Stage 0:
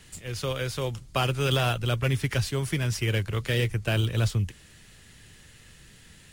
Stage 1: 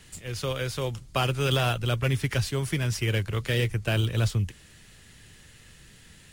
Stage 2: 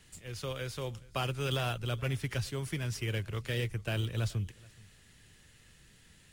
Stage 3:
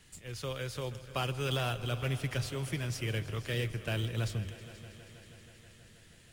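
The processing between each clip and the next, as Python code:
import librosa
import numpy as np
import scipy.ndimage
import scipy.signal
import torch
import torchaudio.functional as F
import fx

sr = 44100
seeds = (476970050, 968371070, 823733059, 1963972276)

y1 = x
y2 = y1 + 10.0 ** (-24.0 / 20.0) * np.pad(y1, (int(426 * sr / 1000.0), 0))[:len(y1)]
y2 = y2 * librosa.db_to_amplitude(-8.0)
y3 = fx.hum_notches(y2, sr, base_hz=50, count=2)
y3 = fx.echo_heads(y3, sr, ms=160, heads='all three', feedback_pct=69, wet_db=-20.0)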